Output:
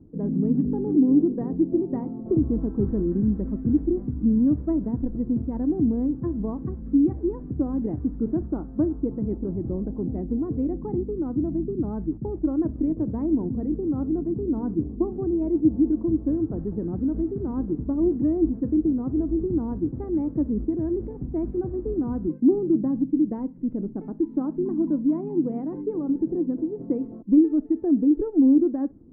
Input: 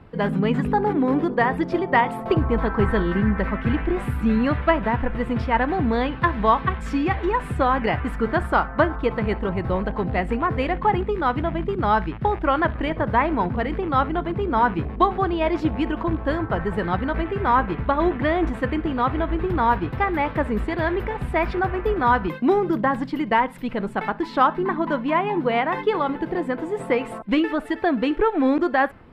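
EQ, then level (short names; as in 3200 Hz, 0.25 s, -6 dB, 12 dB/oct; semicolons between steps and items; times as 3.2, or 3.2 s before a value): synth low-pass 300 Hz, resonance Q 3.7; air absorption 140 m; -6.0 dB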